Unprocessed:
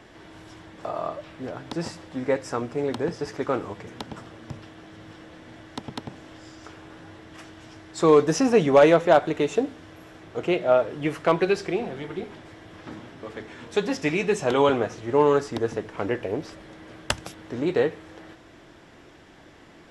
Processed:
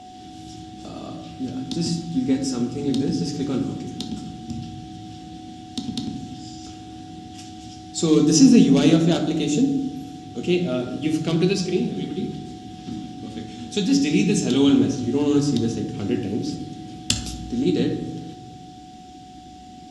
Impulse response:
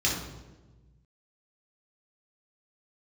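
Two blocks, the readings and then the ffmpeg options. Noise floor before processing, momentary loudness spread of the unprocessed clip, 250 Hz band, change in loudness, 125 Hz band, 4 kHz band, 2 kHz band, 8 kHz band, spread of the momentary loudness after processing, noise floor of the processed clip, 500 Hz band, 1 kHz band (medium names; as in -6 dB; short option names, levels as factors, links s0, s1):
-50 dBFS, 22 LU, +9.0 dB, +2.0 dB, +8.5 dB, +7.5 dB, -4.5 dB, +10.0 dB, 21 LU, -41 dBFS, -4.5 dB, -7.5 dB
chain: -filter_complex "[0:a]equalizer=f=250:t=o:w=1:g=12,equalizer=f=500:t=o:w=1:g=-9,equalizer=f=1000:t=o:w=1:g=-12,equalizer=f=2000:t=o:w=1:g=-6,equalizer=f=4000:t=o:w=1:g=7,equalizer=f=8000:t=o:w=1:g=9,aeval=exprs='val(0)+0.0126*sin(2*PI*740*n/s)':c=same,asplit=2[s0][s1];[1:a]atrim=start_sample=2205[s2];[s1][s2]afir=irnorm=-1:irlink=0,volume=0.237[s3];[s0][s3]amix=inputs=2:normalize=0,volume=0.794"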